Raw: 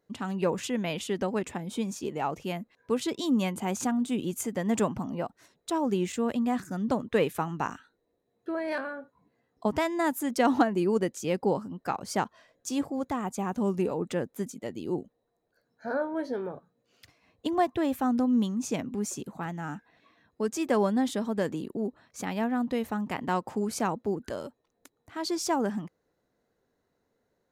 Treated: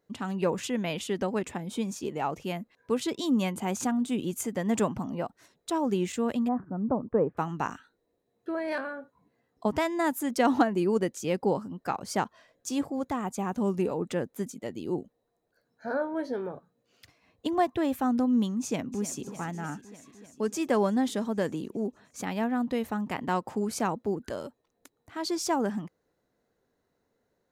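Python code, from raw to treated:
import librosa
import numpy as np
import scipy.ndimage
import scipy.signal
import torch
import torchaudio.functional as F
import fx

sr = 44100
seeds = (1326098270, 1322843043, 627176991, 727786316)

y = fx.lowpass(x, sr, hz=1100.0, slope=24, at=(6.47, 7.37), fade=0.02)
y = fx.echo_throw(y, sr, start_s=18.62, length_s=0.59, ms=300, feedback_pct=75, wet_db=-14.0)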